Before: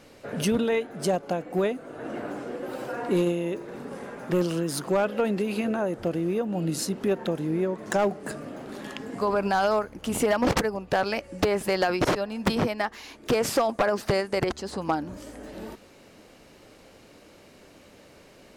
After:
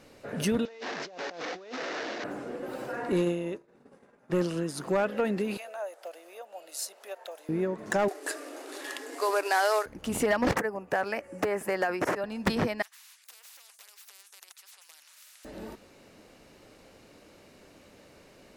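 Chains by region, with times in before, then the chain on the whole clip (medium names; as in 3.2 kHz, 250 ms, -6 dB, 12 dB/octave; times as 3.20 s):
0.65–2.24 s: one-bit delta coder 32 kbps, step -30 dBFS + high-pass 370 Hz + compressor with a negative ratio -37 dBFS
3.12–4.80 s: expander -27 dBFS + low-pass 12 kHz 24 dB/octave
5.57–7.49 s: ladder high-pass 550 Hz, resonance 60% + tilt EQ +3.5 dB/octave
8.08–9.86 s: CVSD coder 64 kbps + brick-wall FIR high-pass 270 Hz + treble shelf 2.5 kHz +9.5 dB
10.56–12.24 s: high-pass 340 Hz 6 dB/octave + peaking EQ 4 kHz -13 dB 1 oct + three bands compressed up and down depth 40%
12.82–15.45 s: ladder high-pass 2.6 kHz, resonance 55% + spectrum-flattening compressor 10:1
whole clip: band-stop 3.2 kHz, Q 28; dynamic bell 1.8 kHz, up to +6 dB, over -48 dBFS, Q 4; trim -3 dB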